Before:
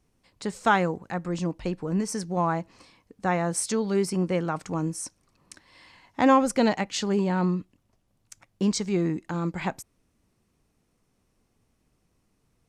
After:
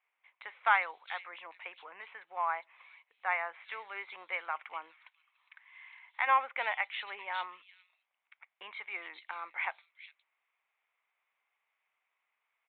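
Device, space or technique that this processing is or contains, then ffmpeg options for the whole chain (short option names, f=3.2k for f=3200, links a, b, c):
musical greeting card: -filter_complex "[0:a]aresample=8000,aresample=44100,highpass=f=840:w=0.5412,highpass=f=840:w=1.3066,equalizer=f=2.2k:t=o:w=0.33:g=11,asplit=3[a][b][c];[a]afade=t=out:st=4.93:d=0.02[d];[b]highpass=900,afade=t=in:st=4.93:d=0.02,afade=t=out:st=6.26:d=0.02[e];[c]afade=t=in:st=6.26:d=0.02[f];[d][e][f]amix=inputs=3:normalize=0,acrossover=split=3600[g][h];[h]adelay=410[i];[g][i]amix=inputs=2:normalize=0,volume=-3.5dB"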